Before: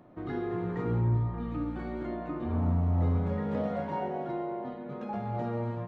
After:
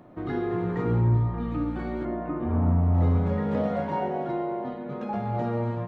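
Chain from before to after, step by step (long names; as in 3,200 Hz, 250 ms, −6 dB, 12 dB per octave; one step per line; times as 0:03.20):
0:02.04–0:02.93: low-pass filter 1,800 Hz → 2,500 Hz 12 dB per octave
level +5 dB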